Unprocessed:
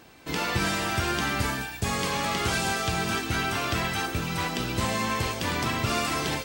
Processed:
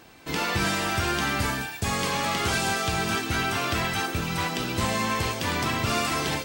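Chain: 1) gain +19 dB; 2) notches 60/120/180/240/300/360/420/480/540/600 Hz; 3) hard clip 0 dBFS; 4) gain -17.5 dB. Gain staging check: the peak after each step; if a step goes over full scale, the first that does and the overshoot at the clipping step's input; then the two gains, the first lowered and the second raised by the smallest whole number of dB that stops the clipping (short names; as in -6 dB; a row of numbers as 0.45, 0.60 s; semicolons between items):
+6.0, +5.5, 0.0, -17.5 dBFS; step 1, 5.5 dB; step 1 +13 dB, step 4 -11.5 dB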